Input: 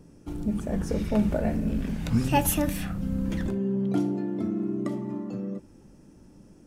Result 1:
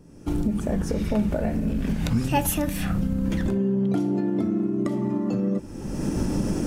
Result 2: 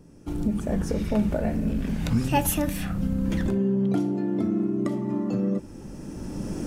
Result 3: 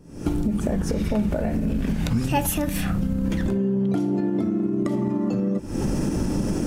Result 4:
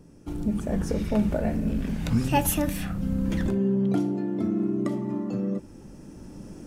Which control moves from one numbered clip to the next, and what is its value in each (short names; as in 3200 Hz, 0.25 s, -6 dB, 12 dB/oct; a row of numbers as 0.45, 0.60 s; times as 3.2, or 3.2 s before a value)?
recorder AGC, rising by: 35, 13, 91, 5.3 dB/s